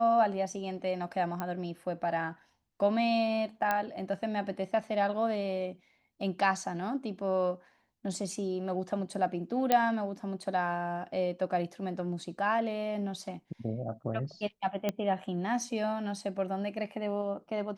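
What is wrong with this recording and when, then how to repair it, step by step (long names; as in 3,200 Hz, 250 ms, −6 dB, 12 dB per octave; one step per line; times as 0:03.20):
0:01.40: click −21 dBFS
0:03.71: click −15 dBFS
0:09.72: click −11 dBFS
0:14.89: click −16 dBFS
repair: click removal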